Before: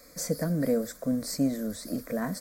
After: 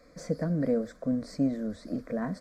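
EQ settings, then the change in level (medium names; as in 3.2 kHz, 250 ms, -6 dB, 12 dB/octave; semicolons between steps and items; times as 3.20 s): tape spacing loss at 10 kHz 23 dB; 0.0 dB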